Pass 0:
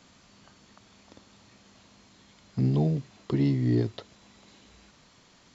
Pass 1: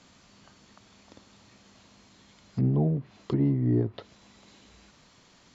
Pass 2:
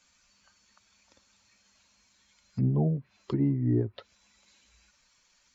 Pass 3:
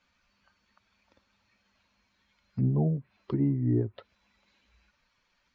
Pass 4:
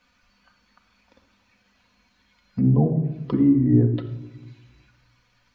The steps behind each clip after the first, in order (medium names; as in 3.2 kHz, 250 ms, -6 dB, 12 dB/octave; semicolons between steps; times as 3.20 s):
low-pass that closes with the level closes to 1.2 kHz, closed at -23 dBFS
expander on every frequency bin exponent 1.5
distance through air 250 m
simulated room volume 3900 m³, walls furnished, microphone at 1.9 m; trim +6.5 dB